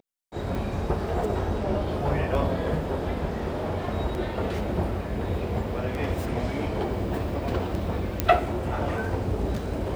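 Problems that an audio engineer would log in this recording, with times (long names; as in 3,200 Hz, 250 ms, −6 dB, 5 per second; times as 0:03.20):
scratch tick 33 1/3 rpm
0:08.20: click −7 dBFS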